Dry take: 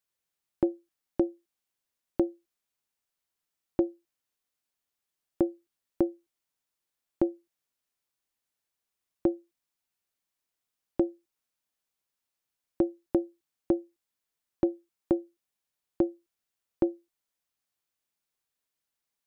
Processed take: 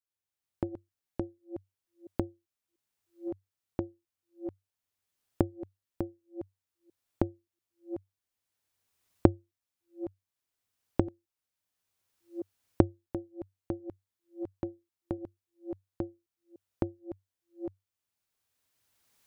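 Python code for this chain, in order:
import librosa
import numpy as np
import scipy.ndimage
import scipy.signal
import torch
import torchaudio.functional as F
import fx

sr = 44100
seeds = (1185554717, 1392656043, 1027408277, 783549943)

y = fx.reverse_delay(x, sr, ms=690, wet_db=-8)
y = fx.recorder_agc(y, sr, target_db=-18.0, rise_db_per_s=16.0, max_gain_db=30)
y = fx.peak_eq(y, sr, hz=96.0, db=13.5, octaves=0.33)
y = y * 10.0 ** (-11.5 / 20.0)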